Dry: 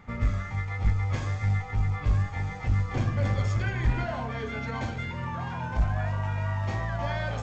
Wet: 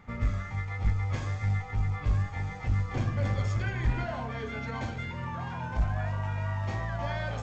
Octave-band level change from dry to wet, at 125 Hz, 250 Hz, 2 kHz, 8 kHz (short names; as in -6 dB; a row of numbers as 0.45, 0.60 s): -2.5 dB, -2.5 dB, -2.5 dB, n/a